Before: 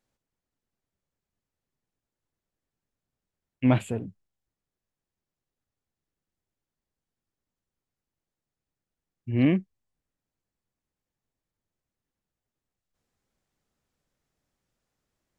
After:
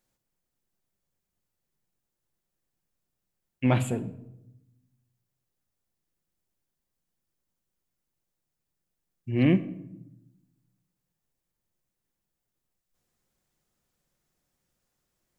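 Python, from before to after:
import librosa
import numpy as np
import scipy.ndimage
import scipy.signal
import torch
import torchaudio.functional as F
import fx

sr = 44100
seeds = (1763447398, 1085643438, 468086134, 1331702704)

y = fx.high_shelf(x, sr, hz=7500.0, db=9.5)
y = fx.room_shoebox(y, sr, seeds[0], volume_m3=3000.0, walls='furnished', distance_m=0.92)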